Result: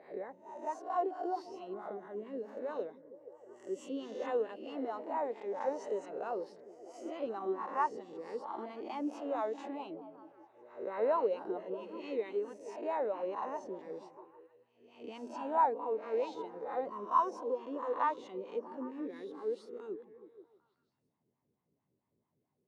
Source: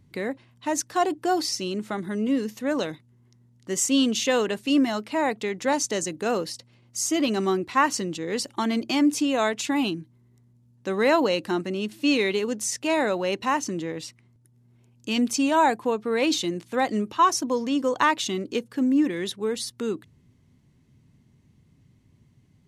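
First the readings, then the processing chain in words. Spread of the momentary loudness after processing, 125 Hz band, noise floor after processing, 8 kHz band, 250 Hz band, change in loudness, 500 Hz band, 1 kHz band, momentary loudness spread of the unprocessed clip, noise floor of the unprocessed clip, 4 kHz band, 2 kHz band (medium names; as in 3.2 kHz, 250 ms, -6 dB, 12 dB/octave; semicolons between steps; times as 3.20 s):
15 LU, under -20 dB, -82 dBFS, under -30 dB, -19.0 dB, -12.5 dB, -9.5 dB, -9.0 dB, 10 LU, -60 dBFS, -28.0 dB, -20.5 dB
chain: reverse spectral sustain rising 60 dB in 0.76 s; wah-wah 4.5 Hz 410–1000 Hz, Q 4; repeats whose band climbs or falls 160 ms, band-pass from 160 Hz, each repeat 0.7 oct, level -8 dB; trim -6 dB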